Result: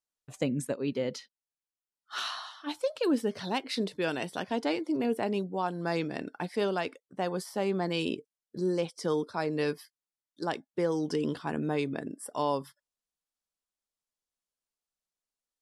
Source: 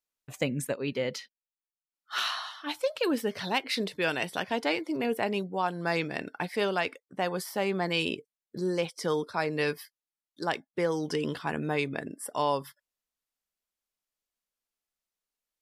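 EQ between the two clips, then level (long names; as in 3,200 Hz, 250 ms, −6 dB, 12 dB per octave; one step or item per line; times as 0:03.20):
low-pass filter 11,000 Hz 24 dB per octave
dynamic equaliser 270 Hz, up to +5 dB, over −41 dBFS, Q 1.1
parametric band 2,200 Hz −5.5 dB 0.98 octaves
−2.5 dB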